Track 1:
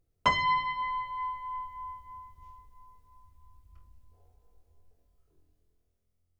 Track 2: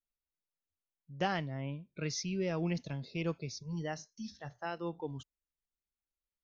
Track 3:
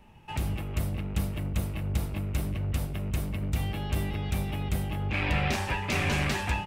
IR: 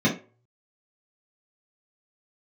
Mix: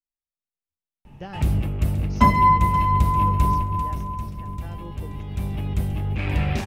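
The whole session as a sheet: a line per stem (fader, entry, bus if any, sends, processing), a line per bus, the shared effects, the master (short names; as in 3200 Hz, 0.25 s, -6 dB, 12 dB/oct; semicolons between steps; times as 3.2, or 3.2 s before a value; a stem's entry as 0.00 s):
-3.0 dB, 1.95 s, send -14 dB, echo send -15.5 dB, dry
-14.0 dB, 0.00 s, no send, no echo send, dry
3.47 s -4 dB -> 3.87 s -16.5 dB -> 5.09 s -16.5 dB -> 5.59 s -8 dB, 1.05 s, no send, echo send -10 dB, dry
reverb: on, RT60 0.35 s, pre-delay 3 ms
echo: feedback echo 0.529 s, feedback 22%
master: low shelf 440 Hz +9 dB; AGC gain up to 5 dB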